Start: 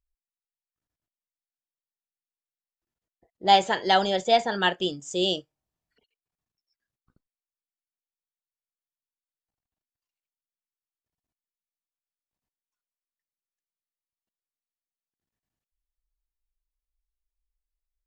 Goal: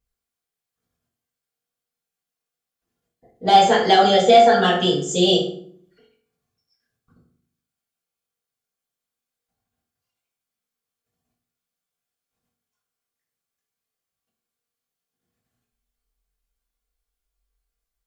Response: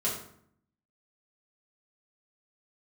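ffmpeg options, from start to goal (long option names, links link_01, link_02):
-filter_complex "[0:a]acontrast=61,alimiter=limit=-9.5dB:level=0:latency=1:release=108[link_01];[1:a]atrim=start_sample=2205,asetrate=48510,aresample=44100[link_02];[link_01][link_02]afir=irnorm=-1:irlink=0,volume=-2dB"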